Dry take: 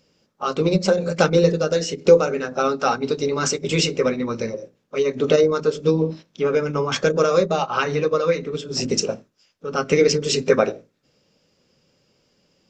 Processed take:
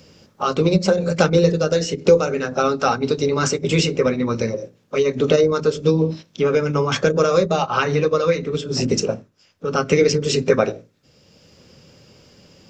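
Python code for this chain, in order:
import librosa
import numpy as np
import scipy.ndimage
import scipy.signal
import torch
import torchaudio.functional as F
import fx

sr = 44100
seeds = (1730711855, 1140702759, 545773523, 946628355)

y = fx.peak_eq(x, sr, hz=87.0, db=8.5, octaves=1.3)
y = fx.band_squash(y, sr, depth_pct=40)
y = y * 10.0 ** (1.0 / 20.0)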